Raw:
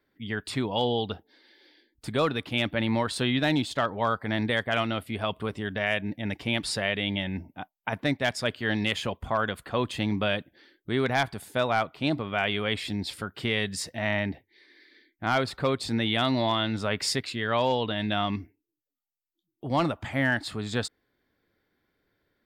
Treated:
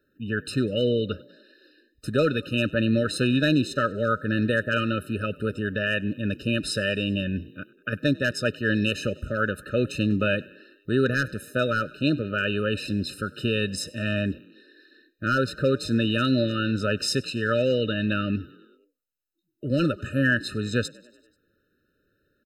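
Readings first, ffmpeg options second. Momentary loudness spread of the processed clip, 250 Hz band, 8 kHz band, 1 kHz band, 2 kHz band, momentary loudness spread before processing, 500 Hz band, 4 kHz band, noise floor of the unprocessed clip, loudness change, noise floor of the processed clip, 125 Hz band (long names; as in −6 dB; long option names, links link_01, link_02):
8 LU, +4.5 dB, +1.0 dB, −3.5 dB, +2.5 dB, 8 LU, +3.0 dB, −1.0 dB, −83 dBFS, +2.5 dB, −72 dBFS, +4.5 dB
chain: -filter_complex "[0:a]asplit=6[link_01][link_02][link_03][link_04][link_05][link_06];[link_02]adelay=97,afreqshift=40,volume=-23.5dB[link_07];[link_03]adelay=194,afreqshift=80,volume=-27.4dB[link_08];[link_04]adelay=291,afreqshift=120,volume=-31.3dB[link_09];[link_05]adelay=388,afreqshift=160,volume=-35.1dB[link_10];[link_06]adelay=485,afreqshift=200,volume=-39dB[link_11];[link_01][link_07][link_08][link_09][link_10][link_11]amix=inputs=6:normalize=0,afftfilt=real='re*eq(mod(floor(b*sr/1024/610),2),0)':imag='im*eq(mod(floor(b*sr/1024/610),2),0)':win_size=1024:overlap=0.75,volume=4.5dB"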